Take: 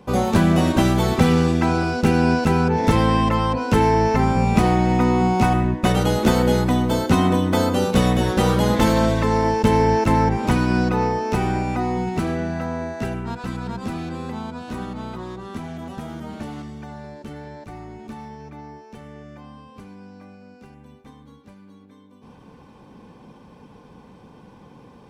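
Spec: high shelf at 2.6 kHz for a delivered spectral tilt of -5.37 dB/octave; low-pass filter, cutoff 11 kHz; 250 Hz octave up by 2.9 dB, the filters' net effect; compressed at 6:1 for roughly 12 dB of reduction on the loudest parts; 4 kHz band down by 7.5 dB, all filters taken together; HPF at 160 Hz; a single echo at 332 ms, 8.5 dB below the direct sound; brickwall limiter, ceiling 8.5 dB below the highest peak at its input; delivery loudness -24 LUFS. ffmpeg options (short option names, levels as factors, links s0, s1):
-af "highpass=160,lowpass=11000,equalizer=f=250:t=o:g=5,highshelf=f=2600:g=-4,equalizer=f=4000:t=o:g=-6.5,acompressor=threshold=0.0708:ratio=6,alimiter=limit=0.0891:level=0:latency=1,aecho=1:1:332:0.376,volume=2"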